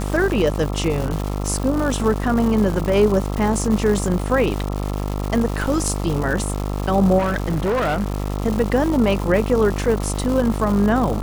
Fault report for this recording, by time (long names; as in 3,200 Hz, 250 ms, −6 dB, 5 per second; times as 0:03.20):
mains buzz 50 Hz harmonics 27 −24 dBFS
surface crackle 330 per second −24 dBFS
0:07.18–0:08.34: clipping −17 dBFS